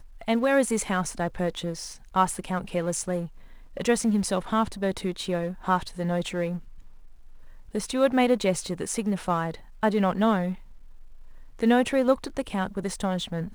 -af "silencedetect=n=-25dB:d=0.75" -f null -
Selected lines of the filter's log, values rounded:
silence_start: 6.55
silence_end: 7.75 | silence_duration: 1.20
silence_start: 10.52
silence_end: 11.60 | silence_duration: 1.08